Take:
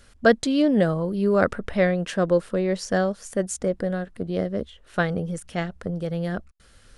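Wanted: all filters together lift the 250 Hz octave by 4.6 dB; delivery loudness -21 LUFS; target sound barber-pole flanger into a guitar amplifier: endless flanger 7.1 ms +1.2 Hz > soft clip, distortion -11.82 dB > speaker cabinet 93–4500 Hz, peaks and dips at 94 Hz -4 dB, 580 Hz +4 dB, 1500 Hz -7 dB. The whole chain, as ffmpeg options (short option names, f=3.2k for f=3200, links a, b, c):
-filter_complex "[0:a]equalizer=f=250:t=o:g=6.5,asplit=2[a][b];[b]adelay=7.1,afreqshift=1.2[c];[a][c]amix=inputs=2:normalize=1,asoftclip=threshold=-15dB,highpass=93,equalizer=f=94:t=q:w=4:g=-4,equalizer=f=580:t=q:w=4:g=4,equalizer=f=1.5k:t=q:w=4:g=-7,lowpass=f=4.5k:w=0.5412,lowpass=f=4.5k:w=1.3066,volume=5dB"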